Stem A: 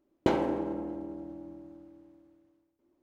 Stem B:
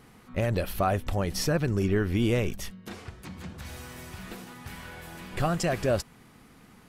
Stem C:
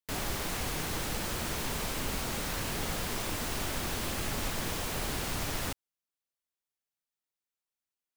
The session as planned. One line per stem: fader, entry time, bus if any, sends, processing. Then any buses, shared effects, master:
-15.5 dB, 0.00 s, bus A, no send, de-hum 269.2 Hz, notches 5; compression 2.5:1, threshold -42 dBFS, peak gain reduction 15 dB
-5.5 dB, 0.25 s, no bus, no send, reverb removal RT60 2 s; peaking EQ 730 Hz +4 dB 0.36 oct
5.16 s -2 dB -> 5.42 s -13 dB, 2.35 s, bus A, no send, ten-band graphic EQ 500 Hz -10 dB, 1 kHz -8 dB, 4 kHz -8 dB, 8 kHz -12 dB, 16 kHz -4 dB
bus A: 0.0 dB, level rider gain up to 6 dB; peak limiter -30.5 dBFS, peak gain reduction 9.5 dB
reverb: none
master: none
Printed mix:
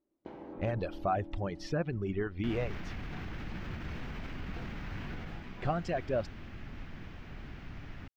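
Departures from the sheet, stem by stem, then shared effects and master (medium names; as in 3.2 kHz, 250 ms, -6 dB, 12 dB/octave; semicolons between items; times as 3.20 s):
stem A -15.5 dB -> -8.5 dB; master: extra distance through air 200 m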